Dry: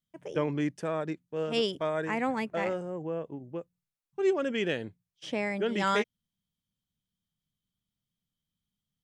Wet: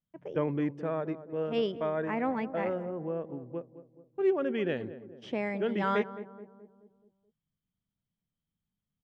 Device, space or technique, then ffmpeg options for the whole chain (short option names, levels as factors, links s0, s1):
phone in a pocket: -filter_complex "[0:a]asettb=1/sr,asplit=3[s0][s1][s2];[s0]atrim=end=4.764[s3];[s1]atrim=start=4.76:end=5.73,asetpts=PTS-STARTPTS,afade=t=in:d=0.004:c=qsin,afade=t=out:st=0.966:d=0.004:c=qsin,aemphasis=mode=production:type=50fm[s4];[s2]atrim=start=5.726[s5];[s3][s4]acrossfade=d=0.004:c1=hsin:c2=qsin[s6];[s6][s5]acrossfade=d=0.004:c1=qsin:c2=hsin,lowpass=3600,highshelf=f=2400:g=-11,asplit=2[s7][s8];[s8]adelay=214,lowpass=f=950:p=1,volume=0.224,asplit=2[s9][s10];[s10]adelay=214,lowpass=f=950:p=1,volume=0.54,asplit=2[s11][s12];[s12]adelay=214,lowpass=f=950:p=1,volume=0.54,asplit=2[s13][s14];[s14]adelay=214,lowpass=f=950:p=1,volume=0.54,asplit=2[s15][s16];[s16]adelay=214,lowpass=f=950:p=1,volume=0.54,asplit=2[s17][s18];[s18]adelay=214,lowpass=f=950:p=1,volume=0.54[s19];[s7][s9][s11][s13][s15][s17][s19]amix=inputs=7:normalize=0"